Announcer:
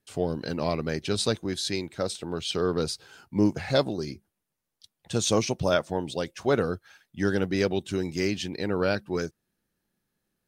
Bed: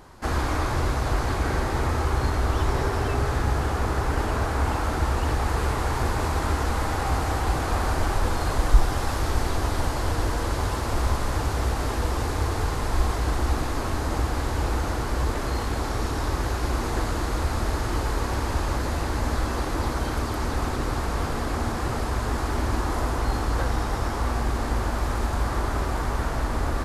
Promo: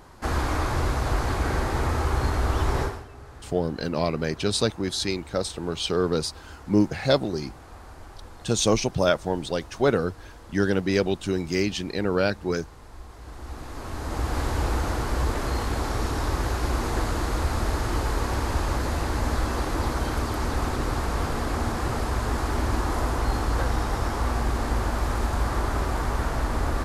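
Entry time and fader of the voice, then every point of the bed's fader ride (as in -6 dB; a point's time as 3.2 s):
3.35 s, +2.5 dB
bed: 2.83 s -0.5 dB
3.07 s -20 dB
13.08 s -20 dB
14.38 s 0 dB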